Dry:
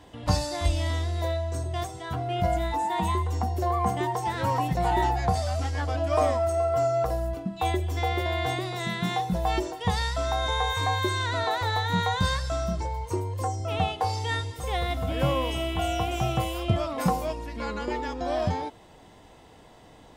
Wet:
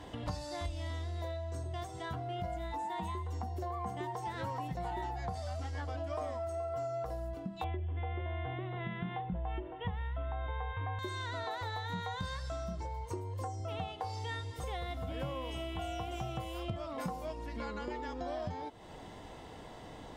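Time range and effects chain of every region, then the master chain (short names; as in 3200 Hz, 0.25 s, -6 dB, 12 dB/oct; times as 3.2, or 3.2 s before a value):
7.64–10.99 steep low-pass 3300 Hz 72 dB/oct + low shelf 140 Hz +9.5 dB
whole clip: high shelf 7000 Hz -6.5 dB; notch 2500 Hz, Q 21; compressor 4:1, threshold -42 dBFS; gain +3 dB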